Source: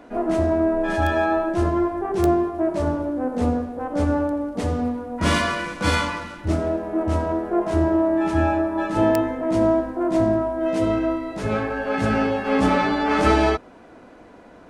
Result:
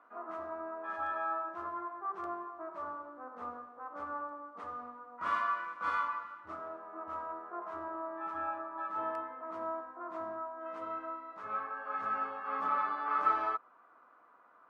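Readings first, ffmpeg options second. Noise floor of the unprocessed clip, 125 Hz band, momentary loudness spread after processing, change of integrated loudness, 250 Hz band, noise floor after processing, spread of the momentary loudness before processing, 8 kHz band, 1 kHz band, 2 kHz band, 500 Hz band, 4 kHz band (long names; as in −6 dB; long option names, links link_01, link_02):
−46 dBFS, below −35 dB, 12 LU, −15.5 dB, −29.5 dB, −62 dBFS, 6 LU, below −30 dB, −9.0 dB, −14.0 dB, −22.0 dB, −26.0 dB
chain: -af "bandpass=frequency=1200:width_type=q:width=8.1:csg=0"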